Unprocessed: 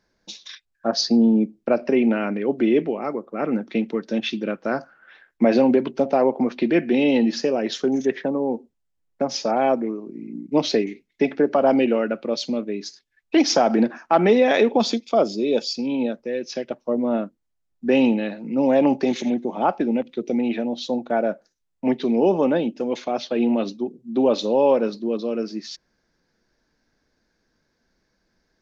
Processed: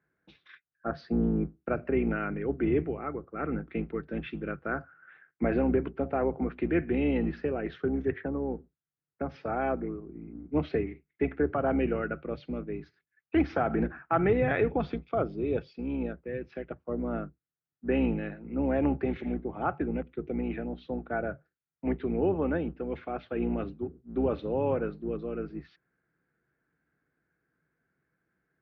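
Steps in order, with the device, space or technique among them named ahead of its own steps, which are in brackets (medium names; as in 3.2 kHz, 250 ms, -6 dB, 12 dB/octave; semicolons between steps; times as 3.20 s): sub-octave bass pedal (octave divider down 2 oct, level -1 dB; cabinet simulation 76–2300 Hz, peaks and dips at 90 Hz -9 dB, 150 Hz +7 dB, 220 Hz -7 dB, 580 Hz -7 dB, 930 Hz -7 dB, 1.4 kHz +6 dB); trim -7 dB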